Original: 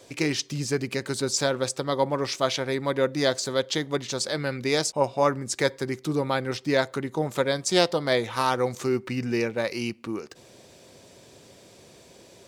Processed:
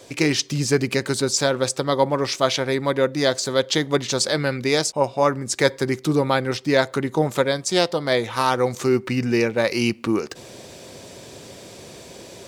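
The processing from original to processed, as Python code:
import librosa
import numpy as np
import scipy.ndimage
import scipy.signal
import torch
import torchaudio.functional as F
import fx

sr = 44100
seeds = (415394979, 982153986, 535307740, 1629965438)

y = fx.rider(x, sr, range_db=10, speed_s=0.5)
y = F.gain(torch.from_numpy(y), 5.0).numpy()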